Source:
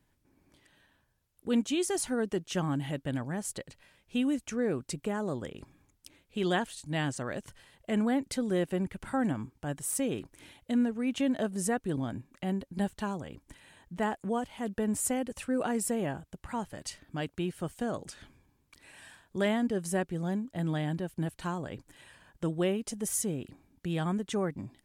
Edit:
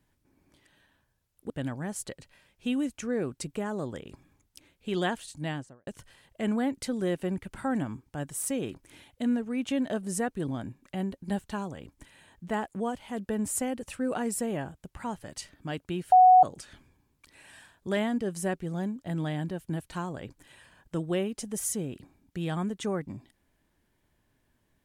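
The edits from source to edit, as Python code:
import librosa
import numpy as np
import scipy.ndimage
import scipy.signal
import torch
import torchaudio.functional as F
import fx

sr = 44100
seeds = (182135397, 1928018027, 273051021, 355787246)

y = fx.studio_fade_out(x, sr, start_s=6.85, length_s=0.51)
y = fx.edit(y, sr, fx.cut(start_s=1.5, length_s=1.49),
    fx.bleep(start_s=17.61, length_s=0.31, hz=739.0, db=-12.5), tone=tone)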